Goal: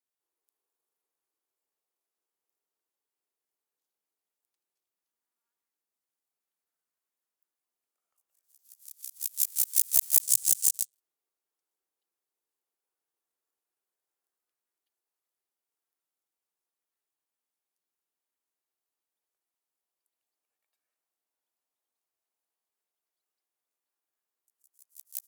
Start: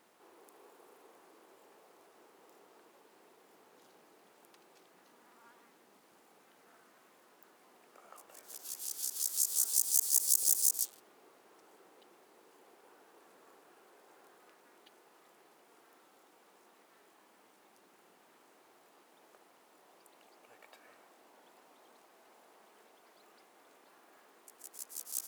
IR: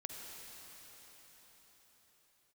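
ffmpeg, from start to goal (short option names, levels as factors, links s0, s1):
-filter_complex "[0:a]aeval=exprs='0.355*(cos(1*acos(clip(val(0)/0.355,-1,1)))-cos(1*PI/2))+0.00316*(cos(5*acos(clip(val(0)/0.355,-1,1)))-cos(5*PI/2))+0.01*(cos(6*acos(clip(val(0)/0.355,-1,1)))-cos(6*PI/2))+0.0501*(cos(7*acos(clip(val(0)/0.355,-1,1)))-cos(7*PI/2))':c=same,crystalizer=i=6.5:c=0,asettb=1/sr,asplit=3[s0][s1][s2];[s0]atrim=end=10.214[s3];[s1]atrim=start=10.21:end=10.94,asetpts=PTS-STARTPTS,afade=t=in:d=0.004:c=qsin,afade=t=out:st=0.726:d=0.004:c=qsin,equalizer=f=125:t=o:w=1:g=10,equalizer=f=250:t=o:w=1:g=-5,equalizer=f=500:t=o:w=1:g=4,equalizer=f=1000:t=o:w=1:g=-9,equalizer=f=2000:t=o:w=1:g=-3,equalizer=f=8000:t=o:w=1:g=6,equalizer=f=16000:t=o:w=1:g=-7[s4];[s2]atrim=start=10.936[s5];[s3][s4]acrossfade=d=0.004:c1=hsin:c2=qsin[s6];[s6][s5]acrossfade=d=0.004:c1=qsin:c2=hsin,volume=0.224"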